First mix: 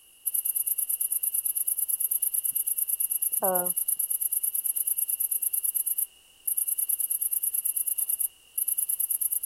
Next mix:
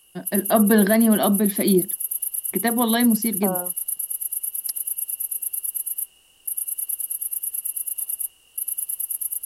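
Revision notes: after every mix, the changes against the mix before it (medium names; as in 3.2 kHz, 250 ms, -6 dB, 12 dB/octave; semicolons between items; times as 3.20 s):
first voice: unmuted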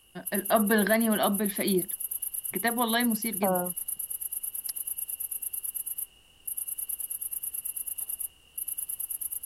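first voice: add peaking EQ 190 Hz -15 dB 2.6 oct; master: add tone controls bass +8 dB, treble -7 dB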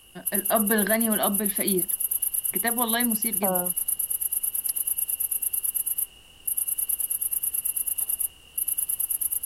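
background +7.5 dB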